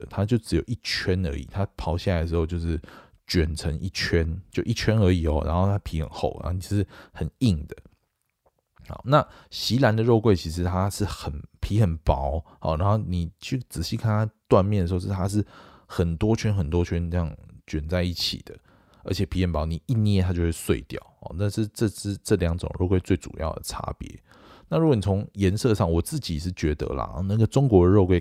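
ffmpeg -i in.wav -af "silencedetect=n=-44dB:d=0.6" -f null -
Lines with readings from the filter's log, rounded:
silence_start: 7.86
silence_end: 8.78 | silence_duration: 0.91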